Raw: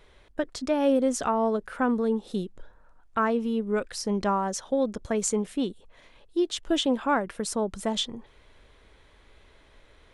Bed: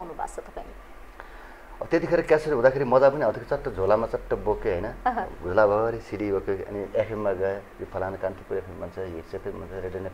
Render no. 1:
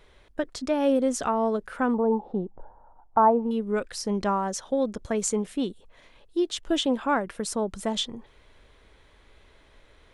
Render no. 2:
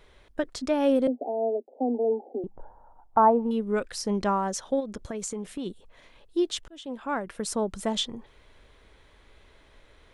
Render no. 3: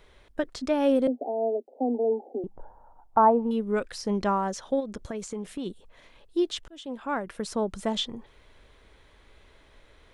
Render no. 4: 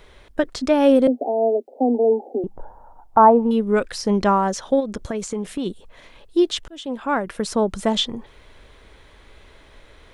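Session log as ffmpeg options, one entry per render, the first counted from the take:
-filter_complex "[0:a]asettb=1/sr,asplit=3[s0][s1][s2];[s0]atrim=end=1.944[s3];[s1]atrim=start=1.94:end=3.51,asetpts=PTS-STARTPTS,afade=t=in:d=0.004:c=qsin,afade=t=out:st=1.566:d=0.004:c=qsin,lowpass=f=840:t=q:w=6.8[s4];[s2]atrim=start=3.506[s5];[s3][s4]acrossfade=d=0.004:c1=hsin:c2=qsin[s6];[s6][s5]acrossfade=d=0.004:c1=qsin:c2=hsin"
-filter_complex "[0:a]asettb=1/sr,asplit=3[s0][s1][s2];[s0]atrim=end=1.074[s3];[s1]atrim=start=1.07:end=2.44,asetpts=PTS-STARTPTS,afade=t=in:d=0.004:c=qsin,afade=t=out:st=1.366:d=0.004:c=qsin,asuperpass=centerf=440:order=20:qfactor=0.78[s4];[s2]atrim=start=2.436[s5];[s3][s4]acrossfade=d=0.004:c1=hsin:c2=qsin[s6];[s6][s5]acrossfade=d=0.004:c1=qsin:c2=hsin,asplit=3[s7][s8][s9];[s7]afade=t=out:st=4.79:d=0.02[s10];[s8]acompressor=threshold=0.0316:ratio=6:attack=3.2:release=140:knee=1:detection=peak,afade=t=in:st=4.79:d=0.02,afade=t=out:st=5.65:d=0.02[s11];[s9]afade=t=in:st=5.65:d=0.02[s12];[s10][s11][s12]amix=inputs=3:normalize=0,asplit=2[s13][s14];[s13]atrim=end=6.68,asetpts=PTS-STARTPTS,afade=t=out:st=6.676:d=0.004:c=hsin[s15];[s14]atrim=start=6.68,asetpts=PTS-STARTPTS,afade=t=in:d=0.84[s16];[s15][s16]concat=n=2:v=0:a=1"
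-filter_complex "[0:a]acrossover=split=5200[s0][s1];[s1]acompressor=threshold=0.00708:ratio=4:attack=1:release=60[s2];[s0][s2]amix=inputs=2:normalize=0"
-af "volume=2.51,alimiter=limit=0.708:level=0:latency=1"

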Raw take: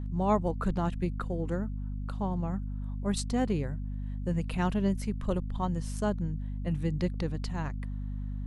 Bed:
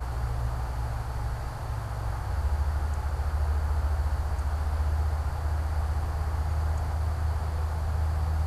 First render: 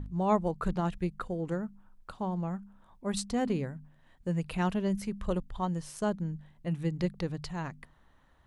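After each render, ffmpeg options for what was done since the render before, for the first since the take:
-af "bandreject=f=50:t=h:w=4,bandreject=f=100:t=h:w=4,bandreject=f=150:t=h:w=4,bandreject=f=200:t=h:w=4,bandreject=f=250:t=h:w=4"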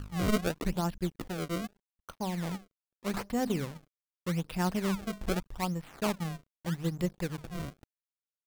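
-af "acrusher=samples=29:mix=1:aa=0.000001:lfo=1:lforange=46.4:lforate=0.82,aeval=exprs='sgn(val(0))*max(abs(val(0))-0.00335,0)':c=same"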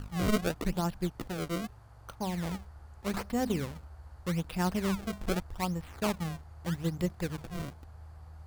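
-filter_complex "[1:a]volume=0.0841[s0];[0:a][s0]amix=inputs=2:normalize=0"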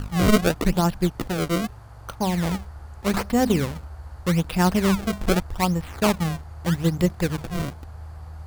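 -af "volume=3.35"

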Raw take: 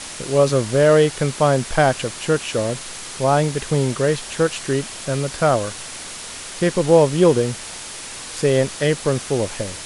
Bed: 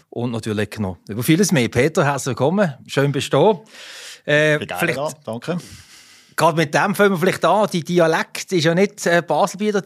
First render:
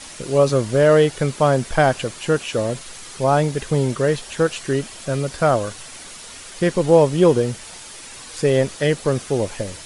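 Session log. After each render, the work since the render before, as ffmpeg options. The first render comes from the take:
-af "afftdn=nr=7:nf=-34"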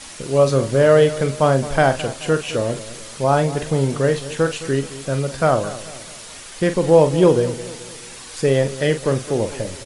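-filter_complex "[0:a]asplit=2[s0][s1];[s1]adelay=44,volume=0.316[s2];[s0][s2]amix=inputs=2:normalize=0,asplit=2[s3][s4];[s4]adelay=215,lowpass=f=2000:p=1,volume=0.178,asplit=2[s5][s6];[s6]adelay=215,lowpass=f=2000:p=1,volume=0.45,asplit=2[s7][s8];[s8]adelay=215,lowpass=f=2000:p=1,volume=0.45,asplit=2[s9][s10];[s10]adelay=215,lowpass=f=2000:p=1,volume=0.45[s11];[s3][s5][s7][s9][s11]amix=inputs=5:normalize=0"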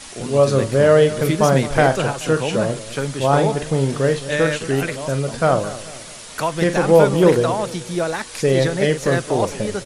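-filter_complex "[1:a]volume=0.447[s0];[0:a][s0]amix=inputs=2:normalize=0"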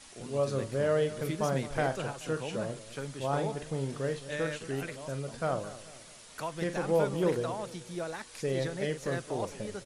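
-af "volume=0.178"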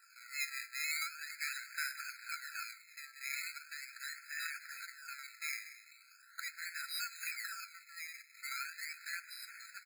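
-af "acrusher=samples=20:mix=1:aa=0.000001:lfo=1:lforange=20:lforate=0.4,afftfilt=real='re*eq(mod(floor(b*sr/1024/1300),2),1)':imag='im*eq(mod(floor(b*sr/1024/1300),2),1)':win_size=1024:overlap=0.75"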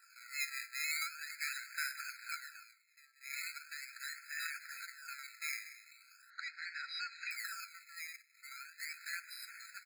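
-filter_complex "[0:a]asettb=1/sr,asplit=3[s0][s1][s2];[s0]atrim=end=6.304[s3];[s1]atrim=start=6.3:end=7.31,asetpts=PTS-STARTPTS,afade=t=in:d=0.004:c=qsin,afade=t=out:st=1.006:d=0.004:c=qsin,lowpass=f=5100:w=0.5412,lowpass=f=5100:w=1.3066[s4];[s2]atrim=start=7.306[s5];[s3][s4]acrossfade=d=0.004:c1=hsin:c2=qsin[s6];[s6][s5]acrossfade=d=0.004:c1=qsin:c2=hsin,asplit=5[s7][s8][s9][s10][s11];[s7]atrim=end=2.6,asetpts=PTS-STARTPTS,afade=t=out:st=2.38:d=0.22:silence=0.199526[s12];[s8]atrim=start=2.6:end=3.2,asetpts=PTS-STARTPTS,volume=0.2[s13];[s9]atrim=start=3.2:end=8.162,asetpts=PTS-STARTPTS,afade=t=in:d=0.22:silence=0.199526[s14];[s10]atrim=start=8.158:end=8.802,asetpts=PTS-STARTPTS,volume=0.376[s15];[s11]atrim=start=8.798[s16];[s12][s13][s14]concat=n=3:v=0:a=1[s17];[s17][s15]acrossfade=d=0.004:c1=hsin:c2=hsin[s18];[s18][s16]acrossfade=d=0.004:c1=hsin:c2=hsin"

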